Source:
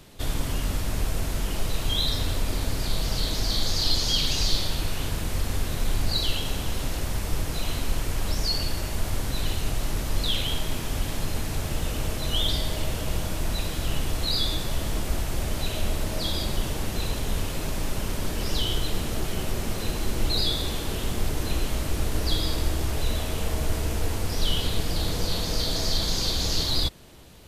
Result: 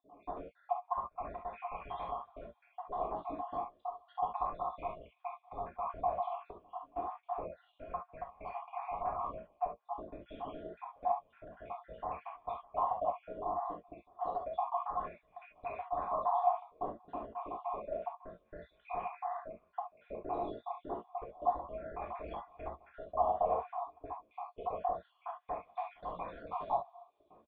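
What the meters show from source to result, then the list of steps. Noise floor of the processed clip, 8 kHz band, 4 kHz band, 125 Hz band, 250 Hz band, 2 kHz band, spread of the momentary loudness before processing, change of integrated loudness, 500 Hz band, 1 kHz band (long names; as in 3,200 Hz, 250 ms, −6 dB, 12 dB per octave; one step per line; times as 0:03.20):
−73 dBFS, below −40 dB, below −40 dB, −29.5 dB, −19.0 dB, −21.0 dB, 6 LU, −11.5 dB, −4.5 dB, +3.5 dB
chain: time-frequency cells dropped at random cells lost 68%
low-shelf EQ 110 Hz −12 dB
gate pattern "xxxxxxxx..x..xx." 166 BPM −24 dB
formant resonators in series a
double-tracking delay 17 ms −12.5 dB
on a send: delay with a high-pass on its return 274 ms, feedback 81%, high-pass 3,100 Hz, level −22 dB
on the sum: reverb whose tail is shaped and stops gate 90 ms flat, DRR −1 dB
auto-filter bell 0.29 Hz 290–2,400 Hz +12 dB
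level +9 dB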